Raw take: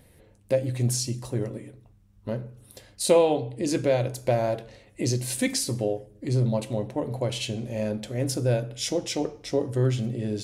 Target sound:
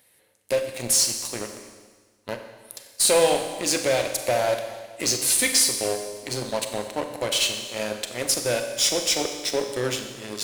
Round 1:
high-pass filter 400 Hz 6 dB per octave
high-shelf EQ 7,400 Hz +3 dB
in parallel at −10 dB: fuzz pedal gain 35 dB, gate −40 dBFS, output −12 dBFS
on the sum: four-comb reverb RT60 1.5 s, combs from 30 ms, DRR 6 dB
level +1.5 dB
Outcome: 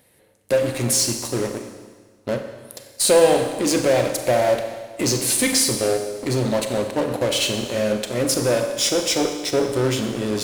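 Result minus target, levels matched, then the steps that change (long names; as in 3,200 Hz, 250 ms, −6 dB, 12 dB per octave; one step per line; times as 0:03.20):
500 Hz band +3.0 dB
change: high-pass filter 1,600 Hz 6 dB per octave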